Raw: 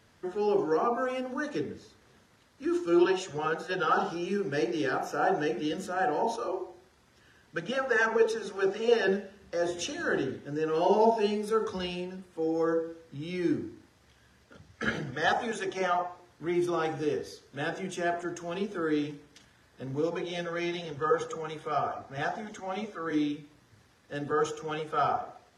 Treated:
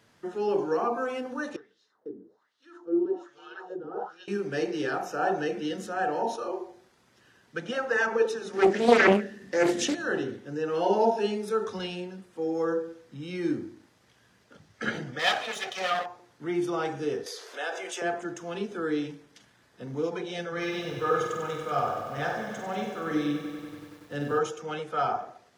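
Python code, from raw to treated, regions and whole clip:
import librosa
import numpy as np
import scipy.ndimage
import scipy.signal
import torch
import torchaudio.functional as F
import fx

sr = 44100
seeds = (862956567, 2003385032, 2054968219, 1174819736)

y = fx.chain(x, sr, fx.peak_eq(hz=2400.0, db=-14.0, octaves=0.65),
    fx.echo_single(ms=496, db=-3.5),
    fx.wah_lfo(hz=1.2, low_hz=280.0, high_hz=3300.0, q=2.9), at=(1.56, 4.28))
y = fx.chain(y, sr, fx.high_shelf(hz=3000.0, db=7.0),
    fx.small_body(hz=(250.0, 1800.0), ring_ms=20, db=14),
    fx.doppler_dist(depth_ms=0.7), at=(8.53, 9.95))
y = fx.chain(y, sr, fx.lower_of_two(delay_ms=1.6),
    fx.bessel_highpass(hz=280.0, order=2),
    fx.peak_eq(hz=3400.0, db=9.0, octaves=1.4), at=(15.19, 16.06))
y = fx.chain(y, sr, fx.highpass(hz=470.0, slope=24),
    fx.env_flatten(amount_pct=50), at=(17.26, 18.02))
y = fx.chain(y, sr, fx.low_shelf(hz=120.0, db=10.0),
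    fx.room_flutter(wall_m=8.3, rt60_s=0.48),
    fx.echo_crushed(ms=95, feedback_pct=80, bits=9, wet_db=-9.0), at=(20.52, 24.39))
y = scipy.signal.sosfilt(scipy.signal.butter(2, 58.0, 'highpass', fs=sr, output='sos'), y)
y = fx.peak_eq(y, sr, hz=74.0, db=-12.0, octaves=0.57)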